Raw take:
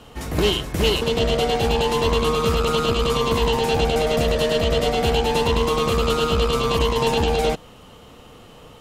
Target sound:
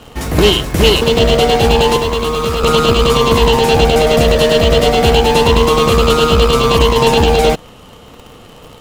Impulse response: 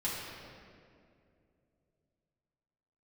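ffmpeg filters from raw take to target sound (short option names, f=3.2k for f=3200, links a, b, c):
-filter_complex "[0:a]asettb=1/sr,asplit=3[a][b][c];[a]atrim=end=1.964[d];[b]atrim=start=1.96:end=2.63,asetpts=PTS-STARTPTS,afade=t=in:d=0.004:c=qsin,afade=t=out:st=0.666:d=0.004:c=qsin,acrossover=split=99|240[e][f][g];[e]acompressor=threshold=-32dB:ratio=4[h];[f]acompressor=threshold=-39dB:ratio=4[i];[g]acompressor=threshold=-24dB:ratio=4[j];[h][i][j]amix=inputs=3:normalize=0[k];[c]atrim=start=2.626[l];[d][k]acrossfade=d=0.004:c1=hsin:c2=qsin[m];[m][l]acrossfade=d=0.004:c1=qsin:c2=hsin,asplit=2[n][o];[o]acrusher=bits=5:mix=0:aa=0.000001,volume=-8dB[p];[n][p]amix=inputs=2:normalize=0,volume=6.5dB"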